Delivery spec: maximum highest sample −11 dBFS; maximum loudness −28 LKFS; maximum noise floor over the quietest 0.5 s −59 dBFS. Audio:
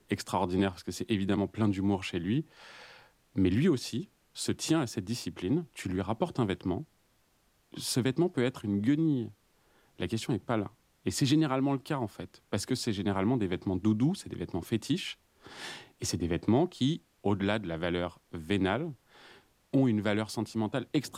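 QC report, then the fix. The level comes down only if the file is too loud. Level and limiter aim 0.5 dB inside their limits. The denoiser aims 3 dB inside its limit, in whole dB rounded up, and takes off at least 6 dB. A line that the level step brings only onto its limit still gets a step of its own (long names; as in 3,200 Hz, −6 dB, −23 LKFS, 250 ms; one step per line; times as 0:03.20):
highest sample −14.0 dBFS: in spec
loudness −31.5 LKFS: in spec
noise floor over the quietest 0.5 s −70 dBFS: in spec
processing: no processing needed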